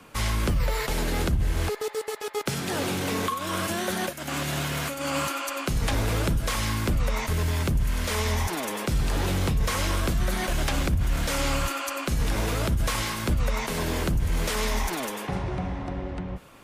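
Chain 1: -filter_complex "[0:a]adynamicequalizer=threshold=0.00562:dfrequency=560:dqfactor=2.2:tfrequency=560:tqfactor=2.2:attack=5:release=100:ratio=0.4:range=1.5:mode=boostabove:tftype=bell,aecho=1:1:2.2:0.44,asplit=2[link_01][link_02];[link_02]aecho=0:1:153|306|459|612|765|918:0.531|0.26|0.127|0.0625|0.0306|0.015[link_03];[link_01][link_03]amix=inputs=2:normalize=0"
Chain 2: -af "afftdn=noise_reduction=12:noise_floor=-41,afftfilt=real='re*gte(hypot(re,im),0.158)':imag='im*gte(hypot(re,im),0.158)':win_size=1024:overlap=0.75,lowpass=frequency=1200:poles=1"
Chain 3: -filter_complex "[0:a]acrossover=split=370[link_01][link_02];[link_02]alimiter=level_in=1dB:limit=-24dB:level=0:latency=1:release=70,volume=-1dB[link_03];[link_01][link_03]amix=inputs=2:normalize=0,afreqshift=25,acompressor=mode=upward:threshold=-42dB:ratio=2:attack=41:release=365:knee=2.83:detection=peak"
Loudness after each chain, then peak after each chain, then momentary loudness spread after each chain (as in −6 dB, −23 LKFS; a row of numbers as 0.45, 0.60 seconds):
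−25.0, −30.5, −28.0 LKFS; −11.0, −16.0, −13.5 dBFS; 4, 9, 7 LU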